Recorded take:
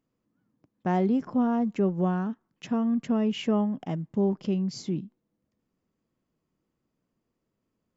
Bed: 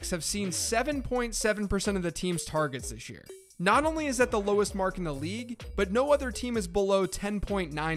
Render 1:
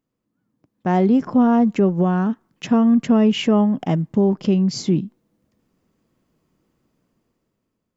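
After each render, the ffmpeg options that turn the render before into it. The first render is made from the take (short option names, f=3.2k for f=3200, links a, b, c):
-af "dynaudnorm=f=380:g=5:m=12dB,alimiter=limit=-8.5dB:level=0:latency=1:release=271"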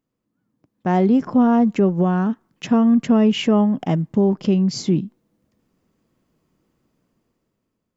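-af anull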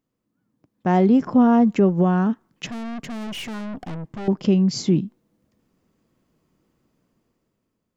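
-filter_complex "[0:a]asettb=1/sr,asplit=3[a][b][c];[a]atrim=end=2.664[d];[b]atrim=start=2.66:end=4.28,asetpts=PTS-STARTPTS,afade=t=in:d=0.004:c=qsin,afade=t=out:st=1.616:d=0.004:c=qsin,aeval=exprs='(tanh(31.6*val(0)+0.45)-tanh(0.45))/31.6':c=same[e];[c]atrim=start=4.276[f];[d][e]acrossfade=d=0.004:c1=hsin:c2=qsin[g];[g][f]acrossfade=d=0.004:c1=qsin:c2=hsin"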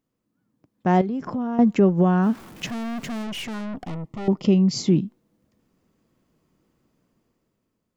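-filter_complex "[0:a]asettb=1/sr,asplit=3[a][b][c];[a]atrim=end=1.014[d];[b]atrim=start=1.01:end=1.59,asetpts=PTS-STARTPTS,afade=t=in:d=0.004:c=qsin,afade=t=out:st=0.576:d=0.004:c=qsin,acompressor=threshold=-24dB:ratio=8:attack=3.2:release=140:knee=1:detection=peak[e];[c]atrim=start=1.586[f];[d][e]acrossfade=d=0.004:c1=hsin:c2=qsin[g];[g][f]acrossfade=d=0.004:c1=qsin:c2=hsin,asettb=1/sr,asplit=3[h][i][j];[h]atrim=end=2.234[k];[i]atrim=start=2.23:end=3.22,asetpts=PTS-STARTPTS,afade=t=in:d=0.004:c=qsin,afade=t=out:st=0.986:d=0.004:c=qsin,aeval=exprs='val(0)+0.5*0.0126*sgn(val(0))':c=same[l];[j]atrim=start=3.216[m];[k][l]acrossfade=d=0.004:c1=hsin:c2=qsin[n];[n][m]acrossfade=d=0.004:c1=qsin:c2=hsin,asettb=1/sr,asplit=3[o][p][q];[o]atrim=end=3.874[r];[p]atrim=start=3.87:end=4.88,asetpts=PTS-STARTPTS,afade=t=in:d=0.004:c=qsin,afade=t=out:st=1.006:d=0.004:c=qsin,asuperstop=centerf=1600:order=8:qfactor=5[s];[q]atrim=start=4.876[t];[r][s]acrossfade=d=0.004:c1=hsin:c2=qsin[u];[u][t]acrossfade=d=0.004:c1=qsin:c2=hsin"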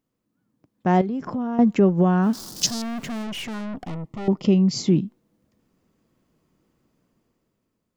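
-filter_complex "[0:a]asettb=1/sr,asplit=3[a][b][c];[a]atrim=end=2.334[d];[b]atrim=start=2.33:end=2.82,asetpts=PTS-STARTPTS,afade=t=in:d=0.004:c=qsin,afade=t=out:st=0.486:d=0.004:c=qsin,highshelf=f=3.4k:t=q:w=3:g=13[e];[c]atrim=start=2.816[f];[d][e]acrossfade=d=0.004:c1=hsin:c2=qsin[g];[g][f]acrossfade=d=0.004:c1=qsin:c2=hsin"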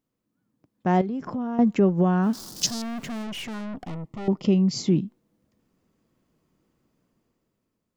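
-af "volume=-2.5dB"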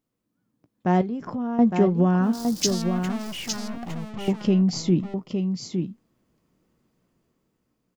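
-filter_complex "[0:a]asplit=2[a][b];[b]adelay=17,volume=-13.5dB[c];[a][c]amix=inputs=2:normalize=0,asplit=2[d][e];[e]aecho=0:1:860:0.501[f];[d][f]amix=inputs=2:normalize=0"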